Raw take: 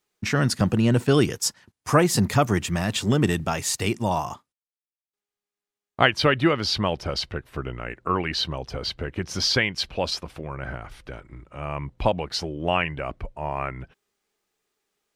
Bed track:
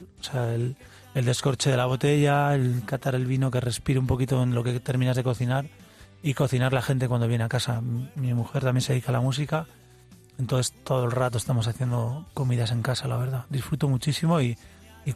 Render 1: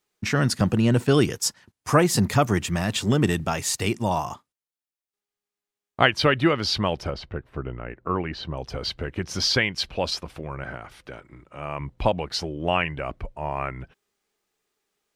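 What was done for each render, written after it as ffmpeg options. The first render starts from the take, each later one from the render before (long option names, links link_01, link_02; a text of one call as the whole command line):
ffmpeg -i in.wav -filter_complex "[0:a]asplit=3[link_01][link_02][link_03];[link_01]afade=type=out:start_time=7.09:duration=0.02[link_04];[link_02]lowpass=frequency=1100:poles=1,afade=type=in:start_time=7.09:duration=0.02,afade=type=out:start_time=8.56:duration=0.02[link_05];[link_03]afade=type=in:start_time=8.56:duration=0.02[link_06];[link_04][link_05][link_06]amix=inputs=3:normalize=0,asettb=1/sr,asplit=3[link_07][link_08][link_09];[link_07]atrim=end=10.634[link_10];[link_08]atrim=start=10.63:end=11.8,asetpts=PTS-STARTPTS,afade=type=in:duration=0.004:curve=qsin,afade=type=out:start_time=1.166:duration=0.004:curve=qsin,highpass=frequency=160:poles=1[link_11];[link_09]atrim=start=11.796[link_12];[link_10][link_11]acrossfade=duration=0.004:curve1=hsin:curve2=qsin[link_13];[link_13][link_12]acrossfade=duration=0.004:curve1=qsin:curve2=hsin" out.wav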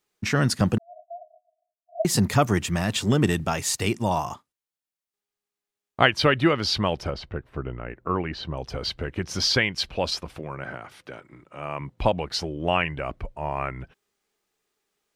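ffmpeg -i in.wav -filter_complex "[0:a]asettb=1/sr,asplit=3[link_01][link_02][link_03];[link_01]atrim=end=0.784[link_04];[link_02]atrim=start=0.78:end=2.05,asetpts=PTS-STARTPTS,afade=type=in:duration=0.004:curve=qsin,afade=type=out:start_time=1.266:duration=0.004:curve=qsin,asuperpass=centerf=670:order=20:qfactor=6.3[link_05];[link_03]atrim=start=2.046[link_06];[link_04][link_05]acrossfade=duration=0.004:curve1=hsin:curve2=qsin[link_07];[link_07][link_06]acrossfade=duration=0.004:curve1=qsin:curve2=hsin,asettb=1/sr,asplit=3[link_08][link_09][link_10];[link_08]atrim=end=10.394[link_11];[link_09]atrim=start=10.39:end=11.99,asetpts=PTS-STARTPTS,afade=type=in:duration=0.004:curve=qsin,afade=type=out:start_time=1.596:duration=0.004:curve=qsin,highpass=120[link_12];[link_10]atrim=start=11.986[link_13];[link_11][link_12]acrossfade=duration=0.004:curve1=hsin:curve2=qsin[link_14];[link_14][link_13]acrossfade=duration=0.004:curve1=qsin:curve2=hsin" out.wav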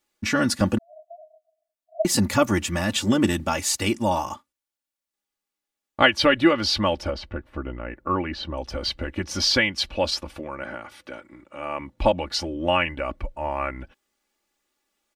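ffmpeg -i in.wav -af "aecho=1:1:3.5:0.76" out.wav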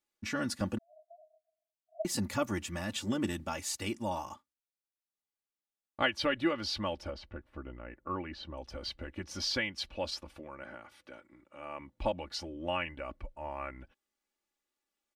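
ffmpeg -i in.wav -af "volume=-12.5dB" out.wav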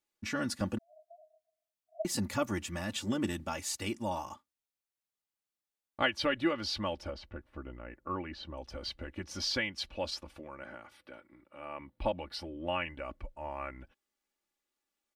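ffmpeg -i in.wav -filter_complex "[0:a]asettb=1/sr,asplit=3[link_01][link_02][link_03];[link_01]atrim=end=10.974[link_04];[link_02]atrim=start=10.97:end=12.85,asetpts=PTS-STARTPTS,afade=type=in:duration=0.004:curve=qsin,afade=type=out:start_time=1.876:duration=0.004:curve=qsin,equalizer=frequency=6600:width_type=o:width=0.36:gain=-14[link_05];[link_03]atrim=start=12.846[link_06];[link_04][link_05]acrossfade=duration=0.004:curve1=hsin:curve2=qsin[link_07];[link_07][link_06]acrossfade=duration=0.004:curve1=qsin:curve2=hsin" out.wav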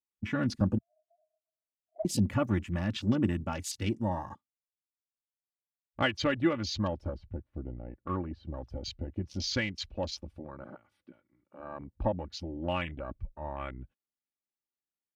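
ffmpeg -i in.wav -af "afwtdn=0.00708,equalizer=frequency=120:width_type=o:width=2:gain=11" out.wav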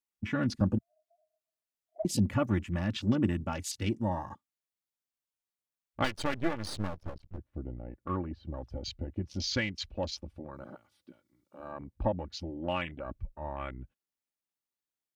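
ffmpeg -i in.wav -filter_complex "[0:a]asettb=1/sr,asplit=3[link_01][link_02][link_03];[link_01]atrim=end=6.044[link_04];[link_02]atrim=start=6.04:end=7.38,asetpts=PTS-STARTPTS,afade=type=in:duration=0.004:curve=qsin,afade=type=out:start_time=1.336:duration=0.004:curve=qsin,aeval=exprs='max(val(0),0)':channel_layout=same[link_05];[link_03]atrim=start=7.376[link_06];[link_04][link_05]acrossfade=duration=0.004:curve1=hsin:curve2=qsin[link_07];[link_07][link_06]acrossfade=duration=0.004:curve1=qsin:curve2=hsin,asettb=1/sr,asplit=3[link_08][link_09][link_10];[link_08]atrim=end=10.544[link_11];[link_09]atrim=start=10.54:end=11.72,asetpts=PTS-STARTPTS,afade=type=in:duration=0.004:curve=qsin,afade=type=out:start_time=1.176:duration=0.004:curve=qsin,highshelf=frequency=3000:width_type=q:width=1.5:gain=7[link_12];[link_10]atrim=start=11.716[link_13];[link_11][link_12]acrossfade=duration=0.004:curve1=hsin:curve2=qsin[link_14];[link_14][link_13]acrossfade=duration=0.004:curve1=qsin:curve2=hsin,asettb=1/sr,asplit=3[link_15][link_16][link_17];[link_15]atrim=end=12.504[link_18];[link_16]atrim=start=12.5:end=13.06,asetpts=PTS-STARTPTS,afade=type=in:duration=0.004:curve=qsin,afade=type=out:start_time=0.556:duration=0.004:curve=qsin,highpass=frequency=130:poles=1[link_19];[link_17]atrim=start=13.056[link_20];[link_18][link_19]acrossfade=duration=0.004:curve1=hsin:curve2=qsin[link_21];[link_21][link_20]acrossfade=duration=0.004:curve1=qsin:curve2=hsin" out.wav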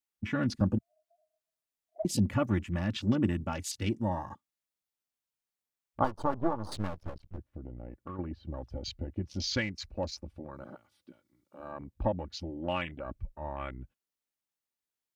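ffmpeg -i in.wav -filter_complex "[0:a]asettb=1/sr,asplit=3[link_01][link_02][link_03];[link_01]atrim=end=6.004[link_04];[link_02]atrim=start=6:end=6.72,asetpts=PTS-STARTPTS,afade=type=in:duration=0.004:curve=qsin,afade=type=out:start_time=0.716:duration=0.004:curve=qsin,highshelf=frequency=1500:width_type=q:width=3:gain=-13.5[link_05];[link_03]atrim=start=6.716[link_06];[link_04][link_05]acrossfade=duration=0.004:curve1=hsin:curve2=qsin[link_07];[link_07][link_06]acrossfade=duration=0.004:curve1=qsin:curve2=hsin,asettb=1/sr,asplit=3[link_08][link_09][link_10];[link_08]atrim=end=7.504[link_11];[link_09]atrim=start=7.5:end=8.19,asetpts=PTS-STARTPTS,afade=type=in:duration=0.004:curve=qsin,afade=type=out:start_time=0.686:duration=0.004:curve=qsin,acompressor=threshold=-37dB:ratio=6:attack=3.2:release=140:knee=1:detection=peak[link_12];[link_10]atrim=start=8.186[link_13];[link_11][link_12]acrossfade=duration=0.004:curve1=hsin:curve2=qsin[link_14];[link_14][link_13]acrossfade=duration=0.004:curve1=qsin:curve2=hsin,asettb=1/sr,asplit=3[link_15][link_16][link_17];[link_15]atrim=end=9.624[link_18];[link_16]atrim=start=9.62:end=10.24,asetpts=PTS-STARTPTS,afade=type=in:duration=0.004:curve=qsin,afade=type=out:start_time=0.616:duration=0.004:curve=qsin,equalizer=frequency=3200:width=3.2:gain=-13[link_19];[link_17]atrim=start=10.236[link_20];[link_18][link_19]acrossfade=duration=0.004:curve1=hsin:curve2=qsin[link_21];[link_21][link_20]acrossfade=duration=0.004:curve1=qsin:curve2=hsin" out.wav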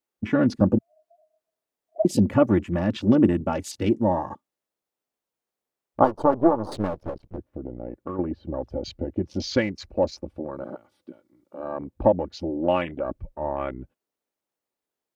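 ffmpeg -i in.wav -af "equalizer=frequency=450:width_type=o:width=2.7:gain=14" out.wav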